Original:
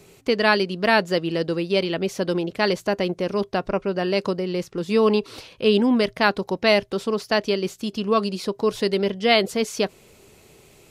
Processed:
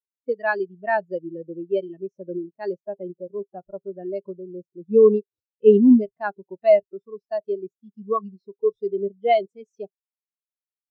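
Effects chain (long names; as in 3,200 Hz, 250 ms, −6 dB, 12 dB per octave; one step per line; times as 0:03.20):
noise reduction from a noise print of the clip's start 6 dB
every bin expanded away from the loudest bin 2.5 to 1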